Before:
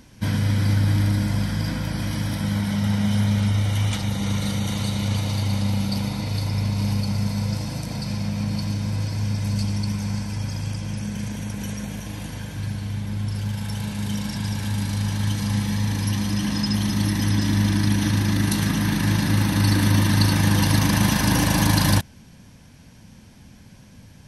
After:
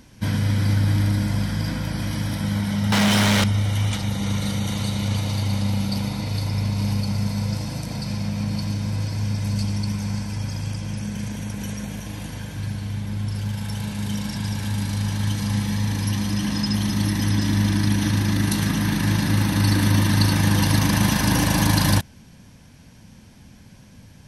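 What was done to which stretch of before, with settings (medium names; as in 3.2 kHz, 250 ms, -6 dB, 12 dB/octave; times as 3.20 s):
2.92–3.44 s: overdrive pedal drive 31 dB, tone 5.9 kHz, clips at -11 dBFS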